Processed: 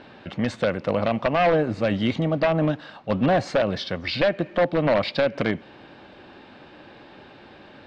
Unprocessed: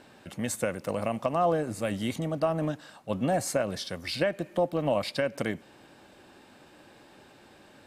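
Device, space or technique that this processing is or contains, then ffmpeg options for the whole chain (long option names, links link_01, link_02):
synthesiser wavefolder: -af "aeval=exprs='0.0891*(abs(mod(val(0)/0.0891+3,4)-2)-1)':channel_layout=same,lowpass=frequency=4200:width=0.5412,lowpass=frequency=4200:width=1.3066,volume=8dB"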